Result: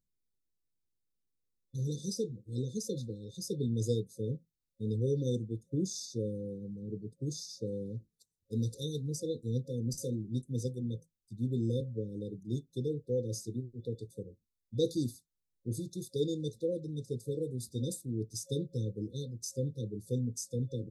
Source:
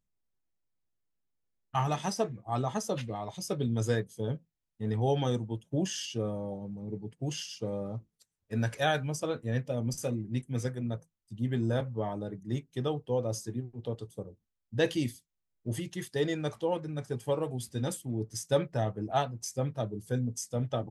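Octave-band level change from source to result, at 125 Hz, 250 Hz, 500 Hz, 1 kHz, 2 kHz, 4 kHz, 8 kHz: -2.0 dB, -2.0 dB, -4.0 dB, under -40 dB, under -40 dB, -5.5 dB, -2.0 dB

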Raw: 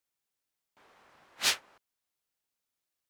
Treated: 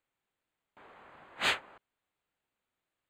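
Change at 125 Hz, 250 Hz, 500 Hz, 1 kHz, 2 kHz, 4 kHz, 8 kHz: +5.0, +4.5, +5.0, +4.5, +2.5, -3.5, -12.0 dB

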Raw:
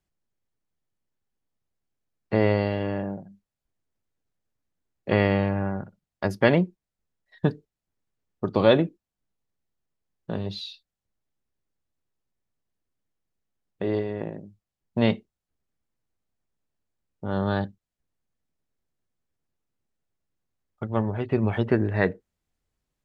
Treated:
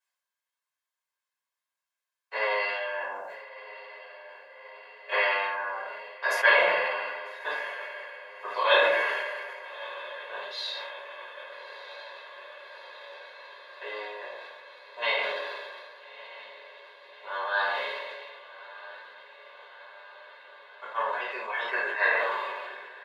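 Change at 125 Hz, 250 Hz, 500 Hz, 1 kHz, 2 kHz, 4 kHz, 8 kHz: under -40 dB, -28.0 dB, -4.5 dB, +5.0 dB, +8.5 dB, +5.0 dB, n/a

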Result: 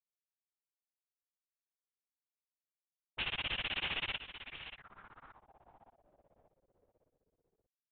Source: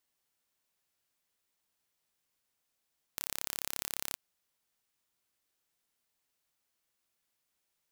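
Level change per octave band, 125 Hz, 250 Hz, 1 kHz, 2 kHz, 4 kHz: +7.5, +3.0, +4.0, +9.5, +7.0 dB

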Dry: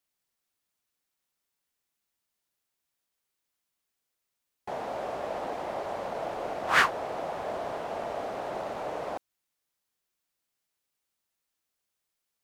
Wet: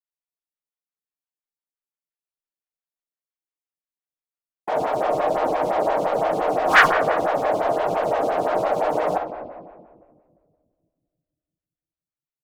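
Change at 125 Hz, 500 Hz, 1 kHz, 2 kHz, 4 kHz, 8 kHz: +10.5, +13.0, +11.5, +9.0, +5.5, +4.5 dB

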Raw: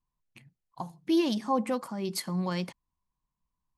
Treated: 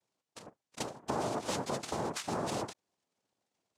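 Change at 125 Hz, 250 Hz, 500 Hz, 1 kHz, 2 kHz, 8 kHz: -6.5, -11.0, -4.0, -2.0, -1.0, +1.5 dB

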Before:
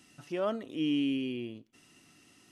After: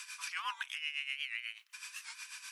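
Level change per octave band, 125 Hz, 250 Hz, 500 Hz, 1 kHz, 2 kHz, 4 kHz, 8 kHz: under -40 dB, under -40 dB, under -40 dB, 0.0 dB, +8.0 dB, +2.5 dB, n/a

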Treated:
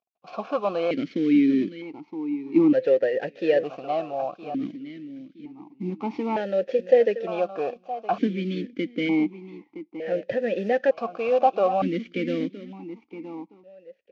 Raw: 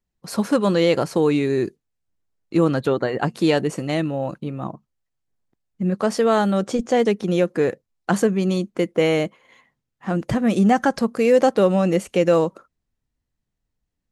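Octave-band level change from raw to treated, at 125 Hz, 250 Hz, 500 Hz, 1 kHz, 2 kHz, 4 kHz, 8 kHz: -12.5 dB, -4.0 dB, -4.0 dB, -3.0 dB, -6.0 dB, -9.5 dB, under -20 dB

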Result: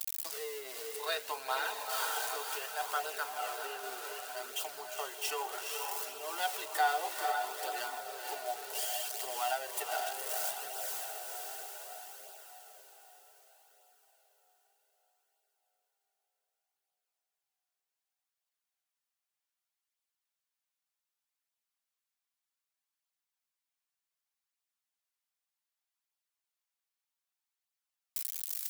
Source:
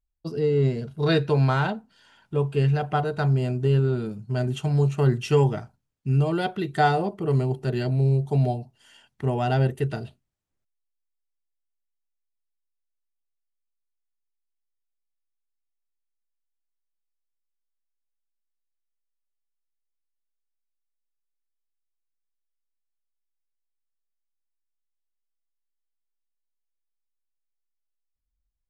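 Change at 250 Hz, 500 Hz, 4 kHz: -33.0, -15.5, -0.5 dB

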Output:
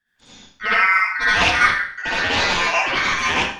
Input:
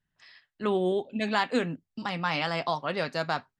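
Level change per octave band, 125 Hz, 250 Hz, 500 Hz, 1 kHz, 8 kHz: +2.5, -1.5, +0.5, +10.5, +21.5 dB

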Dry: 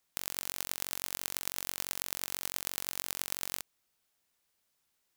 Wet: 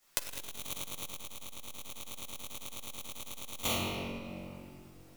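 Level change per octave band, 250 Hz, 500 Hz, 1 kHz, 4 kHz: +10.0, +6.0, +2.0, 0.0 dB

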